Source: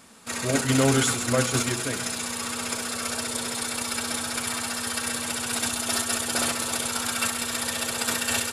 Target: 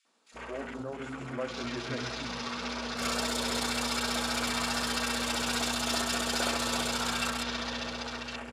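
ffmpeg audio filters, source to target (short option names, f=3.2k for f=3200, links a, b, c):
-filter_complex "[0:a]acompressor=threshold=-27dB:ratio=2.5,asoftclip=type=hard:threshold=-24dB,alimiter=level_in=4.5dB:limit=-24dB:level=0:latency=1,volume=-4.5dB,highpass=150,lowpass=5.9k,aeval=exprs='val(0)+0.00251*(sin(2*PI*60*n/s)+sin(2*PI*2*60*n/s)/2+sin(2*PI*3*60*n/s)/3+sin(2*PI*4*60*n/s)/4+sin(2*PI*5*60*n/s)/5)':c=same,dynaudnorm=f=240:g=11:m=8dB,acrossover=split=270|1900[a][b][c];[b]adelay=50[d];[a]adelay=350[e];[e][d][c]amix=inputs=3:normalize=0,asplit=3[f][g][h];[f]afade=t=out:st=0.81:d=0.02[i];[g]flanger=delay=3.1:depth=5:regen=-47:speed=1.8:shape=sinusoidal,afade=t=in:st=0.81:d=0.02,afade=t=out:st=3:d=0.02[j];[h]afade=t=in:st=3:d=0.02[k];[i][j][k]amix=inputs=3:normalize=0,afwtdn=0.00891"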